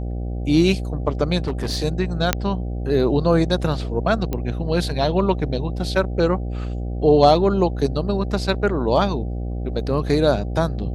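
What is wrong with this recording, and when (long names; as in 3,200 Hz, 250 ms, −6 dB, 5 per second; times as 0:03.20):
mains buzz 60 Hz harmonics 13 −26 dBFS
0:01.38–0:01.80: clipping −19 dBFS
0:02.33: click −1 dBFS
0:04.33: click −12 dBFS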